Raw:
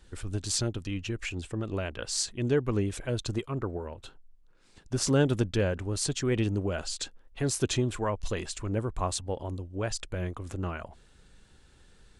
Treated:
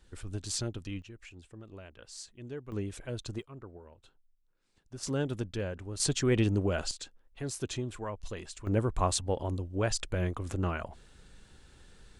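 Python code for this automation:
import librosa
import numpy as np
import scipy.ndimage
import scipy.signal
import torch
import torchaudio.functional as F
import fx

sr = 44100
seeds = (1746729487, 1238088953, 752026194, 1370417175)

y = fx.gain(x, sr, db=fx.steps((0.0, -5.0), (1.02, -15.5), (2.72, -7.0), (3.42, -14.5), (5.03, -8.0), (6.0, 1.0), (6.91, -8.0), (8.67, 2.0)))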